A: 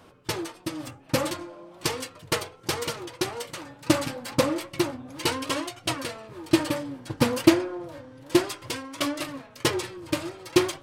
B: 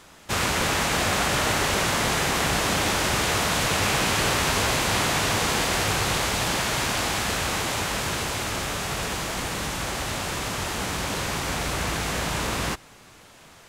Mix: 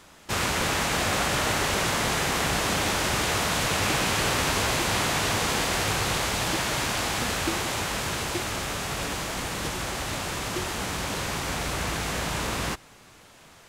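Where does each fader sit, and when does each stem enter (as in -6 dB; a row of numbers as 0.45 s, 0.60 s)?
-15.0 dB, -2.0 dB; 0.00 s, 0.00 s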